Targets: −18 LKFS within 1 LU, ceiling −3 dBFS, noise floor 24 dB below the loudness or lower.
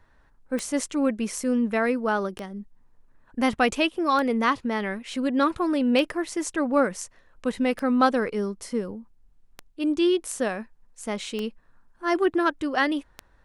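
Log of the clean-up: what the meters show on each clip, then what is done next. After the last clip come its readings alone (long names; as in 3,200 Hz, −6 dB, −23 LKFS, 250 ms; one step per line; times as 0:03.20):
number of clicks 8; integrated loudness −25.5 LKFS; sample peak −8.0 dBFS; target loudness −18.0 LKFS
→ click removal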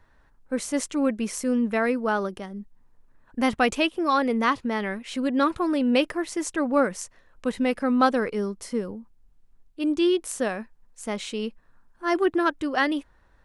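number of clicks 0; integrated loudness −25.5 LKFS; sample peak −8.0 dBFS; target loudness −18.0 LKFS
→ level +7.5 dB
brickwall limiter −3 dBFS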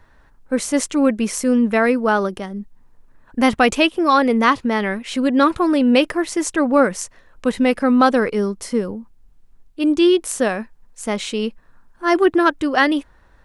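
integrated loudness −18.0 LKFS; sample peak −3.0 dBFS; background noise floor −52 dBFS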